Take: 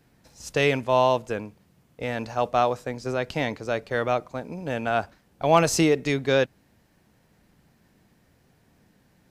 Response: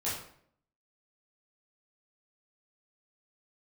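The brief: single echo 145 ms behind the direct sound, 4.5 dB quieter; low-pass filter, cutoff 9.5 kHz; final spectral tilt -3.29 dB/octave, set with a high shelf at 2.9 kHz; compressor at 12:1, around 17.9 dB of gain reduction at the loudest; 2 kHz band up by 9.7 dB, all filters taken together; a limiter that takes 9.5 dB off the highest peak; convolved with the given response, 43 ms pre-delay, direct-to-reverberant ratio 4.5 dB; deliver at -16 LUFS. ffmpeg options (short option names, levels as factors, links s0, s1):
-filter_complex "[0:a]lowpass=9500,equalizer=f=2000:t=o:g=8.5,highshelf=f=2900:g=9,acompressor=threshold=0.0398:ratio=12,alimiter=limit=0.0794:level=0:latency=1,aecho=1:1:145:0.596,asplit=2[s0][s1];[1:a]atrim=start_sample=2205,adelay=43[s2];[s1][s2]afir=irnorm=-1:irlink=0,volume=0.335[s3];[s0][s3]amix=inputs=2:normalize=0,volume=7.5"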